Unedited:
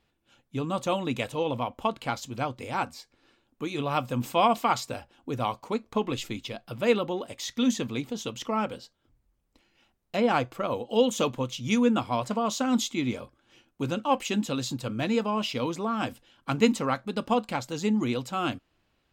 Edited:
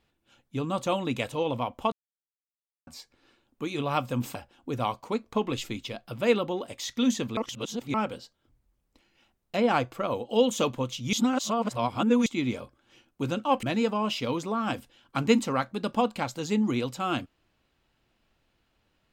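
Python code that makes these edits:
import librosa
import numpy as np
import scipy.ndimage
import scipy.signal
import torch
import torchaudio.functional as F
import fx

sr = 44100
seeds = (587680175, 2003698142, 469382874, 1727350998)

y = fx.edit(x, sr, fx.silence(start_s=1.92, length_s=0.95),
    fx.cut(start_s=4.35, length_s=0.6),
    fx.reverse_span(start_s=7.97, length_s=0.57),
    fx.reverse_span(start_s=11.73, length_s=1.13),
    fx.cut(start_s=14.23, length_s=0.73), tone=tone)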